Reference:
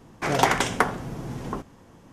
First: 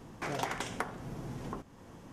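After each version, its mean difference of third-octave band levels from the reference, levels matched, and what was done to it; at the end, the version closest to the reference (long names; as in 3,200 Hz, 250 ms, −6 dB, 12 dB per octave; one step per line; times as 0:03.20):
5.5 dB: downward compressor 2 to 1, threshold −44 dBFS, peak gain reduction 16.5 dB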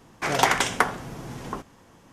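2.5 dB: tilt shelving filter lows −3.5 dB, about 690 Hz
level −1 dB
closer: second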